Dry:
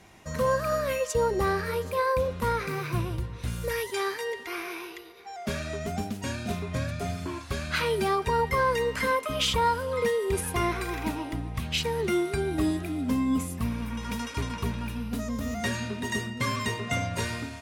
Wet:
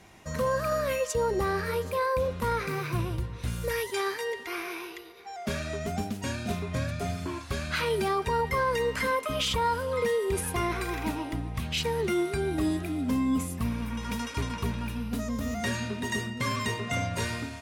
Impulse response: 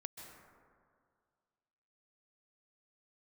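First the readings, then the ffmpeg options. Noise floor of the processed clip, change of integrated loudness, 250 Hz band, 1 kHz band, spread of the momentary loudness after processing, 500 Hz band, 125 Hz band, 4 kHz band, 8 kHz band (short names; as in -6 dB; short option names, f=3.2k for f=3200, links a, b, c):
-42 dBFS, -1.0 dB, -0.5 dB, -1.5 dB, 7 LU, -1.0 dB, -0.5 dB, -1.5 dB, -0.5 dB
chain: -af "alimiter=limit=-19.5dB:level=0:latency=1:release=18"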